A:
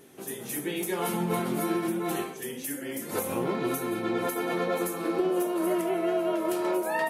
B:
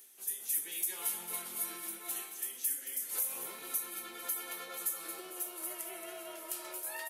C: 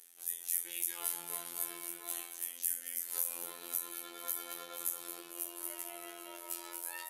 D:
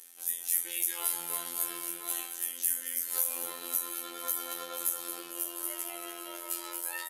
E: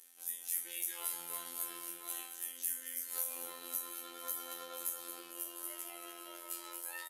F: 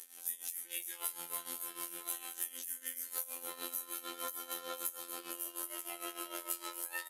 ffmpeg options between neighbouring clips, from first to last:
ffmpeg -i in.wav -af "aderivative,areverse,acompressor=mode=upward:threshold=-41dB:ratio=2.5,areverse,aecho=1:1:224|448|672|896:0.316|0.13|0.0532|0.0218" out.wav
ffmpeg -i in.wav -af "lowshelf=frequency=270:gain=-6,afftfilt=real='hypot(re,im)*cos(PI*b)':imag='0':win_size=2048:overlap=0.75,volume=2dB" out.wav
ffmpeg -i in.wav -filter_complex "[0:a]aecho=1:1:3.8:0.37,asplit=2[link_01][link_02];[link_02]asoftclip=type=tanh:threshold=-25dB,volume=-10dB[link_03];[link_01][link_03]amix=inputs=2:normalize=0,aecho=1:1:696:0.126,volume=3.5dB" out.wav
ffmpeg -i in.wav -filter_complex "[0:a]asplit=2[link_01][link_02];[link_02]adelay=31,volume=-11dB[link_03];[link_01][link_03]amix=inputs=2:normalize=0,volume=-7.5dB" out.wav
ffmpeg -i in.wav -af "acompressor=threshold=-42dB:ratio=6,tremolo=f=6.6:d=0.75,volume=10dB" out.wav

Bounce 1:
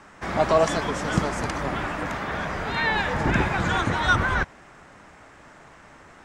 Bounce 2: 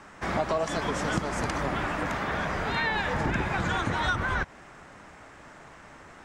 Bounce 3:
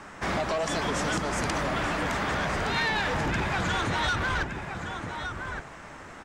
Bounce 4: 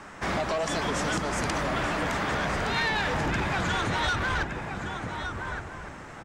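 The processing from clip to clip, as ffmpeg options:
ffmpeg -i in.wav -af "acompressor=threshold=-24dB:ratio=6" out.wav
ffmpeg -i in.wav -filter_complex "[0:a]aecho=1:1:1166:0.266,acrossover=split=2900[link_01][link_02];[link_01]asoftclip=type=tanh:threshold=-29dB[link_03];[link_03][link_02]amix=inputs=2:normalize=0,volume=4.5dB" out.wav
ffmpeg -i in.wav -filter_complex "[0:a]asplit=2[link_01][link_02];[link_02]adelay=1458,volume=-11dB,highshelf=frequency=4000:gain=-32.8[link_03];[link_01][link_03]amix=inputs=2:normalize=0" out.wav

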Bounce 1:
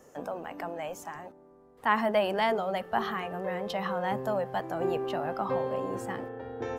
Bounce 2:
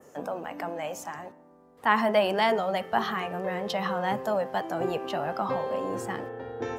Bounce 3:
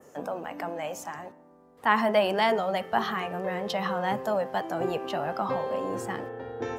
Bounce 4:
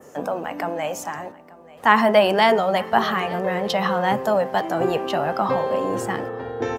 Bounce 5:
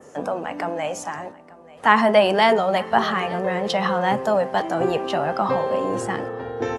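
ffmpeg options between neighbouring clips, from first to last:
ffmpeg -i in.wav -af "adynamicequalizer=threshold=0.00316:dfrequency=5400:dqfactor=0.95:tfrequency=5400:tqfactor=0.95:attack=5:release=100:ratio=0.375:range=2:mode=boostabove:tftype=bell,highpass=84,bandreject=frequency=130.3:width_type=h:width=4,bandreject=frequency=260.6:width_type=h:width=4,bandreject=frequency=390.9:width_type=h:width=4,bandreject=frequency=521.2:width_type=h:width=4,bandreject=frequency=651.5:width_type=h:width=4,bandreject=frequency=781.8:width_type=h:width=4,bandreject=frequency=912.1:width_type=h:width=4,bandreject=frequency=1042.4:width_type=h:width=4,bandreject=frequency=1172.7:width_type=h:width=4,bandreject=frequency=1303:width_type=h:width=4,bandreject=frequency=1433.3:width_type=h:width=4,bandreject=frequency=1563.6:width_type=h:width=4,bandreject=frequency=1693.9:width_type=h:width=4,bandreject=frequency=1824.2:width_type=h:width=4,bandreject=frequency=1954.5:width_type=h:width=4,bandreject=frequency=2084.8:width_type=h:width=4,bandreject=frequency=2215.1:width_type=h:width=4,bandreject=frequency=2345.4:width_type=h:width=4,bandreject=frequency=2475.7:width_type=h:width=4,bandreject=frequency=2606:width_type=h:width=4,bandreject=frequency=2736.3:width_type=h:width=4,bandreject=frequency=2866.6:width_type=h:width=4,bandreject=frequency=2996.9:width_type=h:width=4,bandreject=frequency=3127.2:width_type=h:width=4,volume=3dB" out.wav
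ffmpeg -i in.wav -af anull out.wav
ffmpeg -i in.wav -af "aecho=1:1:885:0.0891,volume=7.5dB" out.wav
ffmpeg -i in.wav -ar 24000 -c:a aac -b:a 64k out.aac

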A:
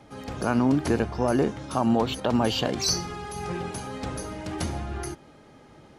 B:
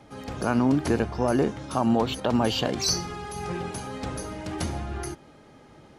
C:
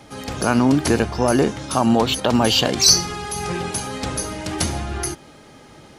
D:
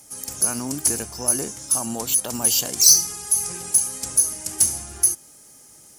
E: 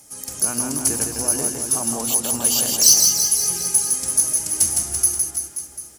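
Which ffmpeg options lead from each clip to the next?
ffmpeg -i in.wav -af anull out.wav
ffmpeg -i in.wav -af "highshelf=frequency=2600:gain=9,volume=5.5dB" out.wav
ffmpeg -i in.wav -af "aemphasis=mode=production:type=cd,aexciter=amount=5.5:drive=8.3:freq=5500,volume=-13.5dB" out.wav
ffmpeg -i in.wav -af "aecho=1:1:160|336|529.6|742.6|976.8:0.631|0.398|0.251|0.158|0.1" out.wav

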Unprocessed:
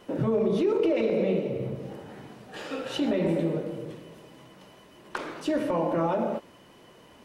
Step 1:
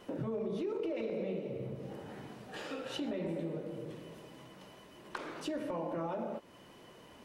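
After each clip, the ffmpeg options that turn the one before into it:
ffmpeg -i in.wav -af "acompressor=threshold=-39dB:ratio=2,volume=-2.5dB" out.wav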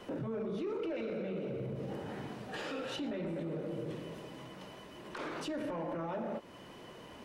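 ffmpeg -i in.wav -filter_complex "[0:a]acrossover=split=300|990[link_01][link_02][link_03];[link_02]asoftclip=type=tanh:threshold=-39.5dB[link_04];[link_01][link_04][link_03]amix=inputs=3:normalize=0,highshelf=frequency=7300:gain=-6,alimiter=level_in=12.5dB:limit=-24dB:level=0:latency=1:release=29,volume=-12.5dB,volume=5dB" out.wav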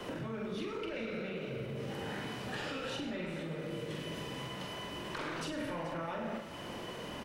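ffmpeg -i in.wav -filter_complex "[0:a]acrossover=split=150|1300[link_01][link_02][link_03];[link_01]acompressor=threshold=-55dB:ratio=4[link_04];[link_02]acompressor=threshold=-51dB:ratio=4[link_05];[link_03]acompressor=threshold=-51dB:ratio=4[link_06];[link_04][link_05][link_06]amix=inputs=3:normalize=0,asplit=2[link_07][link_08];[link_08]adelay=44,volume=-5dB[link_09];[link_07][link_09]amix=inputs=2:normalize=0,asplit=2[link_10][link_11];[link_11]aecho=0:1:99|433:0.266|0.178[link_12];[link_10][link_12]amix=inputs=2:normalize=0,volume=7.5dB" out.wav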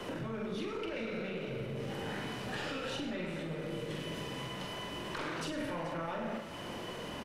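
ffmpeg -i in.wav -filter_complex "[0:a]asplit=2[link_01][link_02];[link_02]aeval=exprs='clip(val(0),-1,0.00376)':channel_layout=same,volume=-6.5dB[link_03];[link_01][link_03]amix=inputs=2:normalize=0,aresample=32000,aresample=44100,volume=-1.5dB" out.wav

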